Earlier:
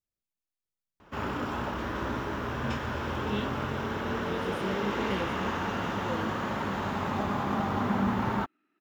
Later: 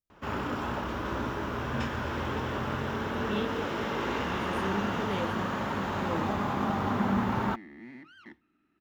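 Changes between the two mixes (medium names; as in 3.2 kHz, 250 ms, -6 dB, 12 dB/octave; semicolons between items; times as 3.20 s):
first sound: entry -0.90 s; second sound: remove band-pass 310–5900 Hz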